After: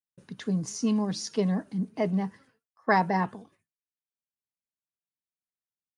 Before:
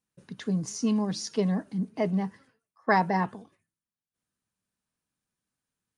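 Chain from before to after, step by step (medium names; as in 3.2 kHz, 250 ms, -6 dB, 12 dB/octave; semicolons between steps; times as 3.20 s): gate with hold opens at -57 dBFS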